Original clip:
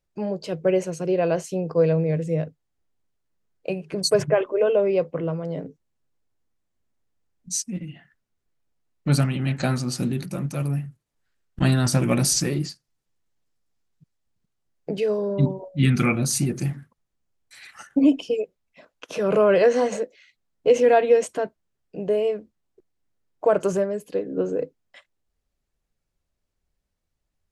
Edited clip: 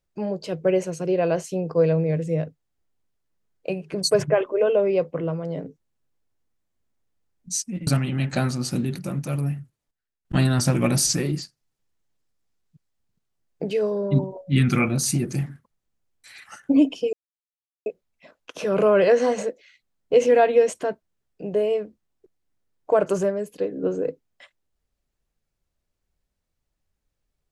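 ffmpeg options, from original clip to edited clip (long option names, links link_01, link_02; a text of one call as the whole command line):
ffmpeg -i in.wav -filter_complex "[0:a]asplit=5[link_01][link_02][link_03][link_04][link_05];[link_01]atrim=end=7.872[link_06];[link_02]atrim=start=9.138:end=11.18,asetpts=PTS-STARTPTS,afade=type=out:start_time=1.732:duration=0.31:curve=log:silence=0.188365[link_07];[link_03]atrim=start=11.18:end=11.52,asetpts=PTS-STARTPTS,volume=-14.5dB[link_08];[link_04]atrim=start=11.52:end=18.4,asetpts=PTS-STARTPTS,afade=type=in:duration=0.31:curve=log:silence=0.188365,afade=type=out:start_time=6.876:duration=0.004:curve=hsin,apad=pad_dur=0.73[link_09];[link_05]atrim=start=18.4,asetpts=PTS-STARTPTS,afade=type=in:duration=0.004:curve=hsin[link_10];[link_07][link_08][link_09][link_10]concat=n=4:v=0:a=1[link_11];[link_06][link_11]acrossfade=duration=0.004:curve1=hsin:curve2=hsin" out.wav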